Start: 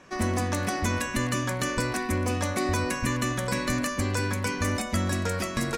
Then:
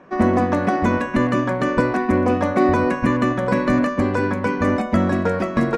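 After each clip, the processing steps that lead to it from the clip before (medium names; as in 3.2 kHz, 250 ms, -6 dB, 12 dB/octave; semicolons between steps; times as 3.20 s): FFT filter 110 Hz 0 dB, 170 Hz +9 dB, 670 Hz +10 dB, 1.5 kHz +5 dB, 12 kHz -21 dB; upward expansion 1.5:1, over -28 dBFS; trim +3.5 dB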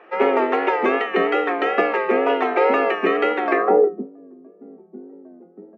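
frequency shift +170 Hz; wow and flutter 71 cents; low-pass sweep 2.8 kHz -> 110 Hz, 3.49–4.10 s; trim -1.5 dB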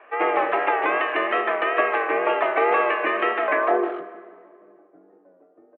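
speakerphone echo 150 ms, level -8 dB; plate-style reverb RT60 2 s, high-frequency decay 0.8×, DRR 12.5 dB; mistuned SSB -72 Hz 570–3300 Hz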